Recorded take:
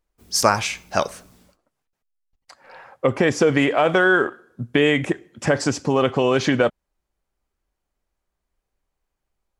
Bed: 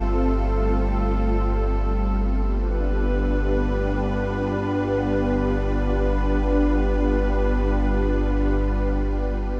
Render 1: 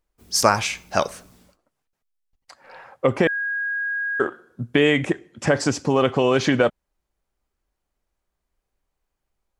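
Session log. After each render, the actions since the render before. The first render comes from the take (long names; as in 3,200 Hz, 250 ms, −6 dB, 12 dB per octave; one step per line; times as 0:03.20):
0:03.27–0:04.20: beep over 1,640 Hz −22.5 dBFS
0:04.83–0:05.55: low-pass filter 11,000 Hz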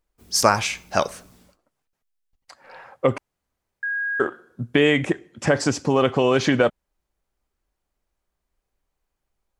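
0:03.18–0:03.83: fill with room tone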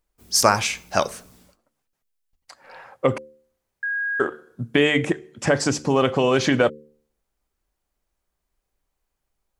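high-shelf EQ 5,800 Hz +4 dB
hum removal 74.86 Hz, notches 7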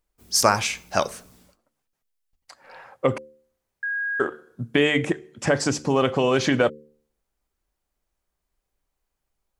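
level −1.5 dB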